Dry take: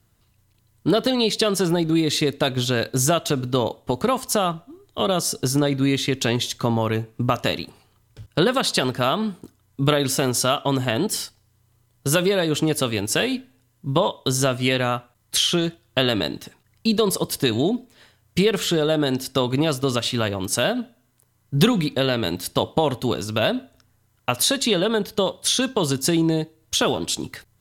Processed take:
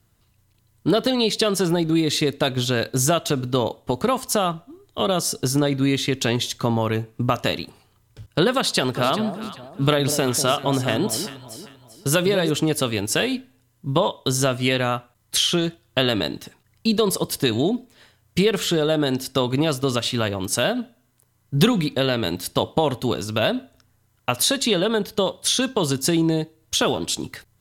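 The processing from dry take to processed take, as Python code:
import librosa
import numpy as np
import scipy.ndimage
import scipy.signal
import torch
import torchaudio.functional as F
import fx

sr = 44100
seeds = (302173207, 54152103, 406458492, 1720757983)

y = fx.echo_alternate(x, sr, ms=196, hz=860.0, feedback_pct=58, wet_db=-9.0, at=(8.92, 12.49), fade=0.02)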